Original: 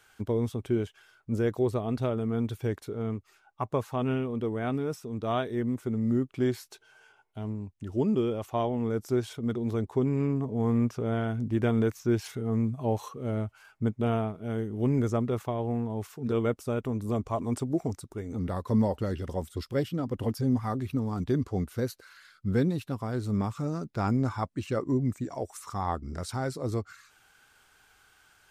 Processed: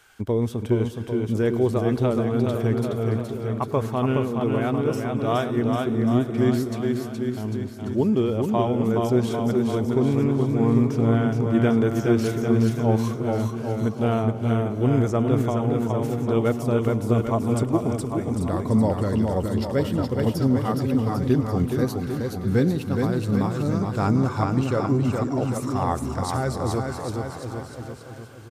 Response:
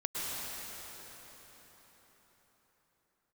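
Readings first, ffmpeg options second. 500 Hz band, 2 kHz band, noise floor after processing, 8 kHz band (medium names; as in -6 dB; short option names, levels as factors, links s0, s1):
+7.0 dB, +7.5 dB, -36 dBFS, +7.5 dB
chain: -filter_complex "[0:a]aecho=1:1:420|798|1138|1444|1720:0.631|0.398|0.251|0.158|0.1,asplit=2[s0][s1];[1:a]atrim=start_sample=2205,adelay=104[s2];[s1][s2]afir=irnorm=-1:irlink=0,volume=0.0891[s3];[s0][s3]amix=inputs=2:normalize=0,volume=1.78"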